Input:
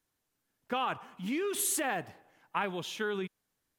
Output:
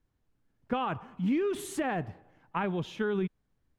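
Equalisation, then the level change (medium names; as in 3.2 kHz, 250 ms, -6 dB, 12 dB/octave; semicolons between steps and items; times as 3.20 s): RIAA curve playback; 0.0 dB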